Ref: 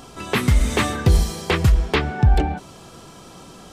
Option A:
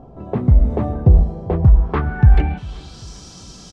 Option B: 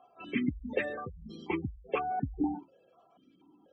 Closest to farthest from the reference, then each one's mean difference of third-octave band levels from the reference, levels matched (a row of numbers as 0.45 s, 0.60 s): A, B; 9.5 dB, 16.5 dB